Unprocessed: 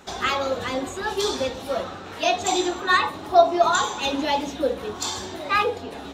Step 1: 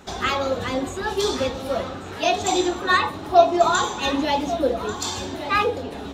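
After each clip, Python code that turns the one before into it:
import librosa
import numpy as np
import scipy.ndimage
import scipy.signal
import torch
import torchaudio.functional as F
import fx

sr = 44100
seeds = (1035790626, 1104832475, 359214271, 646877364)

y = fx.low_shelf(x, sr, hz=280.0, db=6.5)
y = y + 10.0 ** (-13.5 / 20.0) * np.pad(y, (int(1140 * sr / 1000.0), 0))[:len(y)]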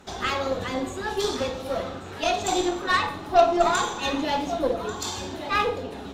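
y = fx.cheby_harmonics(x, sr, harmonics=(6,), levels_db=(-21,), full_scale_db=-2.0)
y = fx.rev_schroeder(y, sr, rt60_s=0.55, comb_ms=33, drr_db=9.5)
y = y * librosa.db_to_amplitude(-4.0)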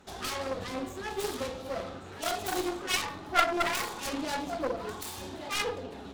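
y = fx.self_delay(x, sr, depth_ms=0.69)
y = y * librosa.db_to_amplitude(-6.5)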